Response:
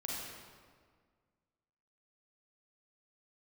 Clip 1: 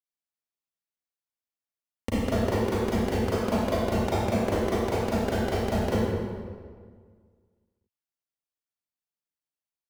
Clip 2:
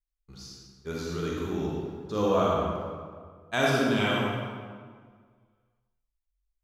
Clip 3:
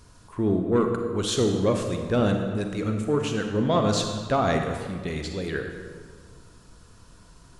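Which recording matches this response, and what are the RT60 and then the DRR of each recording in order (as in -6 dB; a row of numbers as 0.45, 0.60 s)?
2; 1.8, 1.8, 1.8 s; -10.5, -4.5, 4.0 dB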